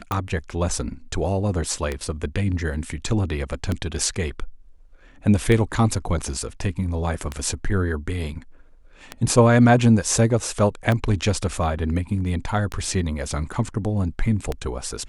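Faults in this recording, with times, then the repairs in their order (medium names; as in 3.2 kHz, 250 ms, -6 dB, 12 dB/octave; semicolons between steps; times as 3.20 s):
tick 33 1/3 rpm -11 dBFS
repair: de-click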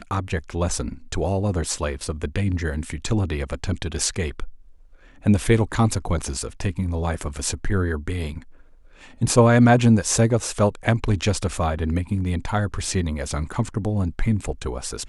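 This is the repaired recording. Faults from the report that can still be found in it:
nothing left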